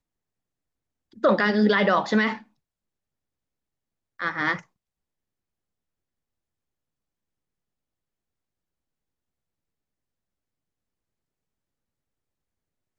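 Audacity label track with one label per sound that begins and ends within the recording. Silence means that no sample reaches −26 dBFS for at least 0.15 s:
1.240000	2.340000	sound
4.210000	4.560000	sound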